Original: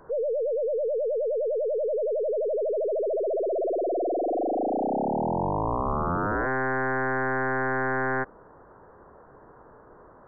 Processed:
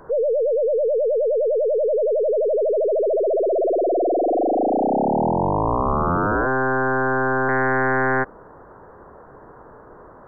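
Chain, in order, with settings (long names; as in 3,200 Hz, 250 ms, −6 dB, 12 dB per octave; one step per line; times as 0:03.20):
0:05.31–0:07.49: Chebyshev low-pass filter 1,600 Hz, order 6
level +7 dB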